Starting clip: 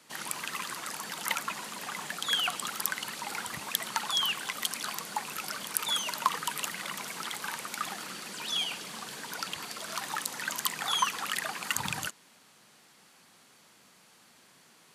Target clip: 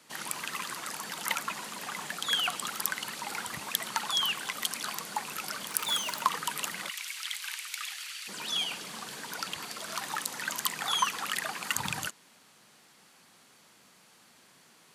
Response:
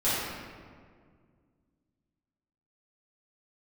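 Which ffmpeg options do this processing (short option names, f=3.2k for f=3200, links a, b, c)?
-filter_complex "[0:a]asettb=1/sr,asplit=3[a][b][c];[a]atrim=end=5.674[d];[b]atrim=start=5.67:end=6.22,asetpts=PTS-STARTPTS,afade=t=in:d=0.004:c=qsin,afade=t=out:st=0.546:d=0.004:c=qsin,acrusher=bits=3:mode=log:mix=0:aa=0.000001[e];[c]atrim=start=6.216[f];[d][e]acrossfade=d=0.004:c1=hsin:c2=qsin[g];[g][f]acrossfade=d=0.004:c1=qsin:c2=hsin,aeval=exprs='0.631*(cos(1*acos(clip(val(0)/0.631,-1,1)))-cos(1*PI/2))+0.00708*(cos(4*acos(clip(val(0)/0.631,-1,1)))-cos(4*PI/2))':c=same,asplit=3[h][i][j];[h]afade=t=out:st=6.88:d=0.02[k];[i]highpass=f=2.4k:t=q:w=1.5,afade=t=in:st=6.88:d=0.02,afade=t=out:st=8.27:d=0.02[l];[j]afade=t=in:st=8.27:d=0.02[m];[k][l][m]amix=inputs=3:normalize=0"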